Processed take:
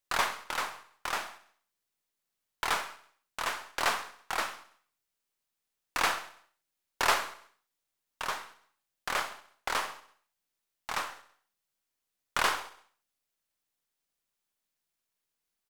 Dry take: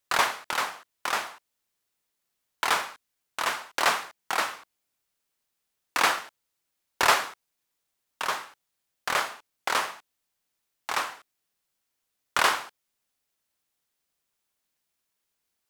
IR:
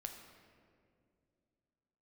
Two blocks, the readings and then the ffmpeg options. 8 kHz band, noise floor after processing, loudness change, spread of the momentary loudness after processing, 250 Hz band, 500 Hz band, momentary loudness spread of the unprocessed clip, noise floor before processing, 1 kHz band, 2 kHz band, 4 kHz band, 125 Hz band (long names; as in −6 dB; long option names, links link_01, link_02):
−5.0 dB, below −85 dBFS, −5.5 dB, 15 LU, −4.5 dB, −5.0 dB, 15 LU, −81 dBFS, −5.0 dB, −5.0 dB, −5.0 dB, −1.5 dB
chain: -filter_complex "[0:a]aeval=exprs='if(lt(val(0),0),0.708*val(0),val(0))':channel_layout=same,asplit=2[link_01][link_02];[link_02]aecho=0:1:66|132|198|264|330:0.133|0.0733|0.0403|0.0222|0.0122[link_03];[link_01][link_03]amix=inputs=2:normalize=0,volume=-4dB"